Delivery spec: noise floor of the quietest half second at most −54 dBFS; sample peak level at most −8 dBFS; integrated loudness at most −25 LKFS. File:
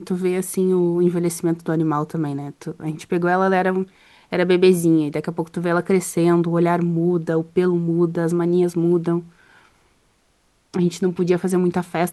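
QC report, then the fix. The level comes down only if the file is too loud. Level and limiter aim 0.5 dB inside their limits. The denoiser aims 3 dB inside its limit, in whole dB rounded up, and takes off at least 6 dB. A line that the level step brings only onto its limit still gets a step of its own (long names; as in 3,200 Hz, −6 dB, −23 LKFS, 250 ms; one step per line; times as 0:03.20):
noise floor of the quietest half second −62 dBFS: in spec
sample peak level −4.5 dBFS: out of spec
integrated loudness −20.0 LKFS: out of spec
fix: level −5.5 dB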